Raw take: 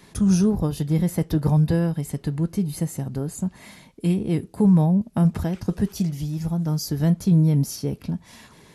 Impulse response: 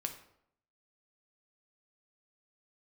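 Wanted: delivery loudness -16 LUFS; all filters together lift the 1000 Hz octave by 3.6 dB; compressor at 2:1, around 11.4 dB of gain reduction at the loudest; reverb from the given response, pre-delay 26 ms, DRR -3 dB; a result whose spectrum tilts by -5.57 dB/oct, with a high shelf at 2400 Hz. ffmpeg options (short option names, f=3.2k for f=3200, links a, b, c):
-filter_complex "[0:a]equalizer=f=1k:t=o:g=3.5,highshelf=f=2.4k:g=8,acompressor=threshold=-35dB:ratio=2,asplit=2[a][b];[1:a]atrim=start_sample=2205,adelay=26[c];[b][c]afir=irnorm=-1:irlink=0,volume=3dB[d];[a][d]amix=inputs=2:normalize=0,volume=10dB"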